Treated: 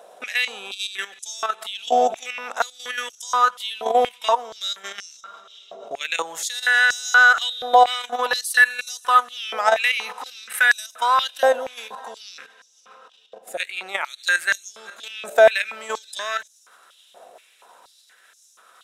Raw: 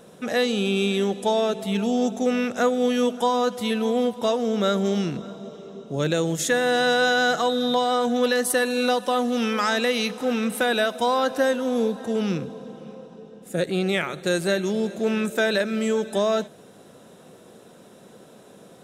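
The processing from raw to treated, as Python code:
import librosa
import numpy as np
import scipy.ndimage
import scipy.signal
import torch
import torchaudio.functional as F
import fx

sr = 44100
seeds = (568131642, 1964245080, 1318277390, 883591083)

y = fx.level_steps(x, sr, step_db=11)
y = fx.dynamic_eq(y, sr, hz=4500.0, q=1.2, threshold_db=-45.0, ratio=4.0, max_db=-5)
y = fx.filter_held_highpass(y, sr, hz=4.2, low_hz=680.0, high_hz=6000.0)
y = y * librosa.db_to_amplitude(5.5)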